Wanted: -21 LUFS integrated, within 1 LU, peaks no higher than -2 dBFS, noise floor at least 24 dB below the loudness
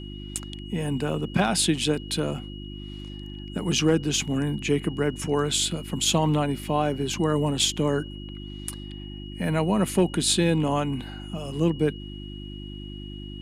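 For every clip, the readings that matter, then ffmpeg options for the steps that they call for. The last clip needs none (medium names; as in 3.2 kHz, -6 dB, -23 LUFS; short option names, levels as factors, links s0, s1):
hum 50 Hz; highest harmonic 350 Hz; hum level -36 dBFS; steady tone 2.9 kHz; tone level -44 dBFS; loudness -25.5 LUFS; peak level -10.5 dBFS; loudness target -21.0 LUFS
-> -af "bandreject=f=50:t=h:w=4,bandreject=f=100:t=h:w=4,bandreject=f=150:t=h:w=4,bandreject=f=200:t=h:w=4,bandreject=f=250:t=h:w=4,bandreject=f=300:t=h:w=4,bandreject=f=350:t=h:w=4"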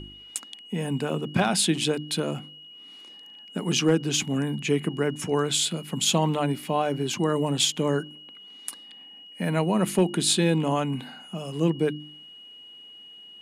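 hum not found; steady tone 2.9 kHz; tone level -44 dBFS
-> -af "bandreject=f=2900:w=30"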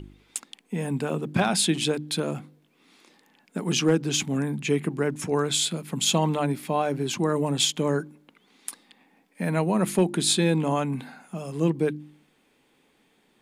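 steady tone not found; loudness -25.5 LUFS; peak level -10.0 dBFS; loudness target -21.0 LUFS
-> -af "volume=1.68"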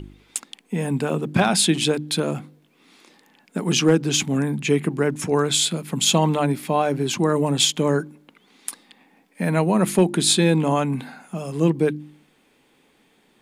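loudness -21.0 LUFS; peak level -5.5 dBFS; noise floor -61 dBFS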